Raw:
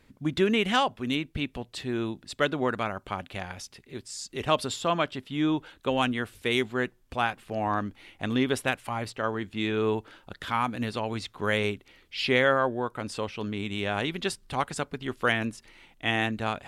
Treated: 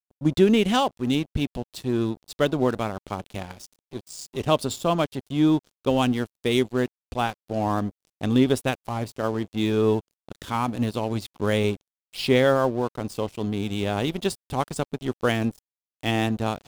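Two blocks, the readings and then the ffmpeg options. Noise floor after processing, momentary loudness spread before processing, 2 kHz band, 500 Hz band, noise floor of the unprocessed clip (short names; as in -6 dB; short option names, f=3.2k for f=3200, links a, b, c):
under -85 dBFS, 11 LU, -3.0 dB, +5.0 dB, -62 dBFS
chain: -af "lowshelf=f=290:g=3,aeval=exprs='sgn(val(0))*max(abs(val(0))-0.00891,0)':c=same,equalizer=f=1.8k:w=0.78:g=-10,volume=6.5dB"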